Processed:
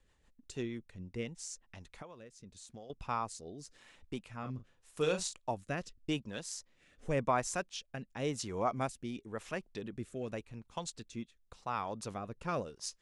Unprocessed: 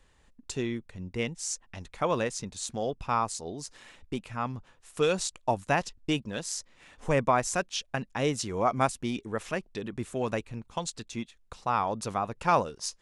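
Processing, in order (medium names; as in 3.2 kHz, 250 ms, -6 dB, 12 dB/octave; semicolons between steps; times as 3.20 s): 1.69–2.90 s: compression 10:1, threshold -40 dBFS, peak gain reduction 17.5 dB; 4.39–5.39 s: doubling 39 ms -7.5 dB; rotary cabinet horn 6.3 Hz, later 0.9 Hz, at 0.81 s; trim -6 dB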